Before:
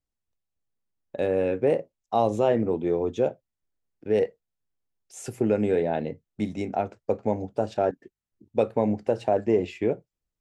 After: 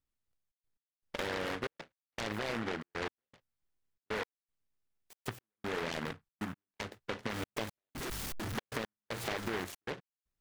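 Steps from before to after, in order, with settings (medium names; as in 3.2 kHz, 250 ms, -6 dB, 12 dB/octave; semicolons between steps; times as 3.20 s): 7.29–9.64 s: one-bit delta coder 64 kbps, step -30.5 dBFS; peak limiter -19.5 dBFS, peak gain reduction 9 dB; compression 5:1, threshold -32 dBFS, peak gain reduction 8 dB; trance gate "xxxx.x..x" 117 bpm -60 dB; delay time shaken by noise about 1.2 kHz, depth 0.31 ms; trim -1.5 dB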